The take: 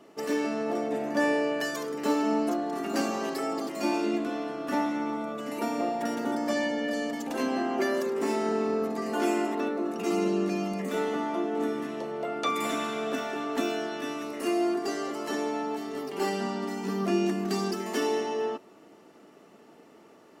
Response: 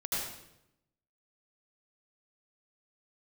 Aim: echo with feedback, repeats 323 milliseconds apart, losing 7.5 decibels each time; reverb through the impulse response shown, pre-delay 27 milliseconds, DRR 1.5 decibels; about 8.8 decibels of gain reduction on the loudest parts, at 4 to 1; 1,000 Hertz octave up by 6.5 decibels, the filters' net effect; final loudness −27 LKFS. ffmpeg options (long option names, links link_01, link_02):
-filter_complex "[0:a]equalizer=frequency=1000:width_type=o:gain=8.5,acompressor=threshold=-29dB:ratio=4,aecho=1:1:323|646|969|1292|1615:0.422|0.177|0.0744|0.0312|0.0131,asplit=2[link_01][link_02];[1:a]atrim=start_sample=2205,adelay=27[link_03];[link_02][link_03]afir=irnorm=-1:irlink=0,volume=-7dB[link_04];[link_01][link_04]amix=inputs=2:normalize=0,volume=2.5dB"